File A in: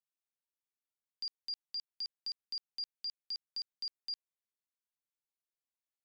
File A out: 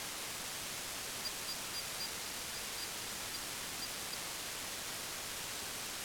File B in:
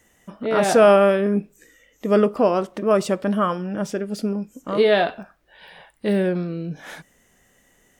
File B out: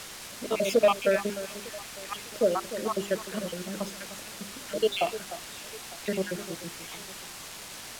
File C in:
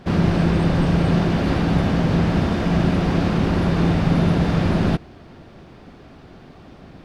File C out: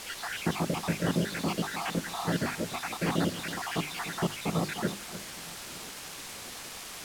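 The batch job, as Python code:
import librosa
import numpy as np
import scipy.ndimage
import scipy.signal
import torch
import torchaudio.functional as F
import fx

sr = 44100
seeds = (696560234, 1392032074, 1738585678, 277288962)

y = fx.spec_dropout(x, sr, seeds[0], share_pct=71)
y = scipy.signal.sosfilt(scipy.signal.butter(2, 170.0, 'highpass', fs=sr, output='sos'), y)
y = fx.peak_eq(y, sr, hz=2900.0, db=6.5, octaves=2.6)
y = fx.hum_notches(y, sr, base_hz=50, count=8)
y = fx.quant_dither(y, sr, seeds[1], bits=6, dither='triangular')
y = np.clip(10.0 ** (8.5 / 20.0) * y, -1.0, 1.0) / 10.0 ** (8.5 / 20.0)
y = fx.echo_alternate(y, sr, ms=301, hz=1600.0, feedback_pct=59, wet_db=-12.5)
y = np.interp(np.arange(len(y)), np.arange(len(y))[::2], y[::2])
y = y * librosa.db_to_amplitude(-5.5)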